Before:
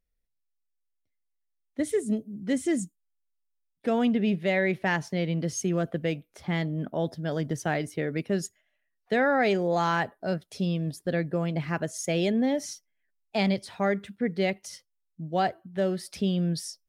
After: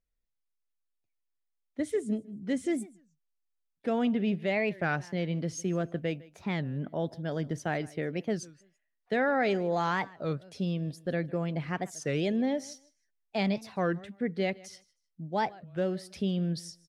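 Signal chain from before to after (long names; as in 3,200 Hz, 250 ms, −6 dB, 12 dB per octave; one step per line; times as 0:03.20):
high-shelf EQ 9,500 Hz −11.5 dB
on a send: repeating echo 155 ms, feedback 21%, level −22 dB
on the sum: wow of a warped record 33 1/3 rpm, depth 250 cents
level −3.5 dB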